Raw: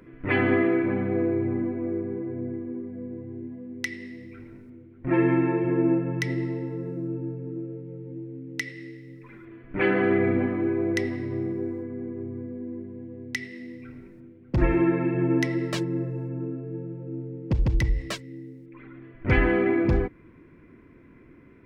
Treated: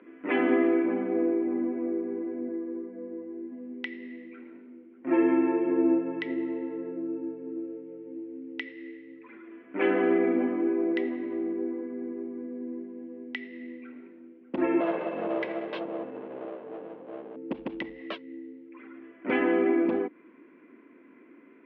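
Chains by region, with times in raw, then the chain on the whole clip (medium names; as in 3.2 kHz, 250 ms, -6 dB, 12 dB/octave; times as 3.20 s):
2.48–3.52 s: distance through air 290 m + comb 5.9 ms, depth 54%
14.80–17.36 s: comb filter that takes the minimum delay 1.9 ms + hum notches 50/100/150/200/250/300/350/400/450 Hz
whole clip: elliptic band-pass 250–3100 Hz, stop band 40 dB; dynamic bell 1.9 kHz, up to -5 dB, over -44 dBFS, Q 0.97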